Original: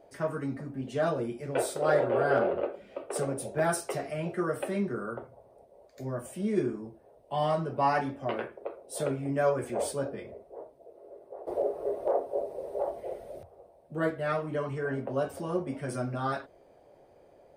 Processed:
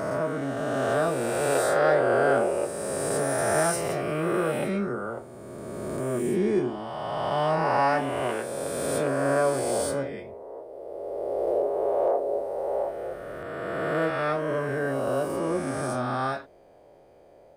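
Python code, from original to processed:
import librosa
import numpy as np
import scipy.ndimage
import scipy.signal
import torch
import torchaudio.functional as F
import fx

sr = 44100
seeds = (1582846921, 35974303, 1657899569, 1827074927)

y = fx.spec_swells(x, sr, rise_s=2.82)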